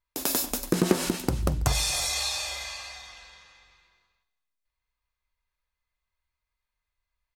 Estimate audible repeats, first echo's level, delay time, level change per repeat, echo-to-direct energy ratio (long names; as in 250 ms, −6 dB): 2, −21.5 dB, 233 ms, repeats not evenly spaced, −18.5 dB